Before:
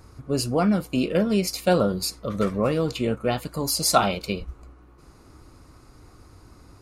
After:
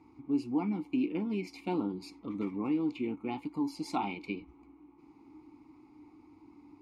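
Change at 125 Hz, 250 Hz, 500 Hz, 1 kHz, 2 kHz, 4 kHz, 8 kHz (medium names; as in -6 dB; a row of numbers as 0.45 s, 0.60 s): -16.0 dB, -6.5 dB, -16.0 dB, -12.5 dB, -13.0 dB, -21.0 dB, under -25 dB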